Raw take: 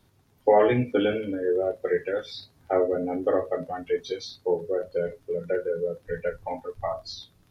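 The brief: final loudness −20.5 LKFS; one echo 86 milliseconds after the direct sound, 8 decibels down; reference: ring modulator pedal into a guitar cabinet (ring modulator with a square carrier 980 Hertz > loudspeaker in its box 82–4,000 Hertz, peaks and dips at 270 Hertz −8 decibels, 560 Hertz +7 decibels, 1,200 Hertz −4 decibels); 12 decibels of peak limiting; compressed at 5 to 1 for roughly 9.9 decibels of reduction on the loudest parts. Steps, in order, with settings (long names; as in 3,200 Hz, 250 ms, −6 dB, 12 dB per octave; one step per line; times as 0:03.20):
downward compressor 5 to 1, threshold −25 dBFS
brickwall limiter −24.5 dBFS
single-tap delay 86 ms −8 dB
ring modulator with a square carrier 980 Hz
loudspeaker in its box 82–4,000 Hz, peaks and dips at 270 Hz −8 dB, 560 Hz +7 dB, 1,200 Hz −4 dB
level +12 dB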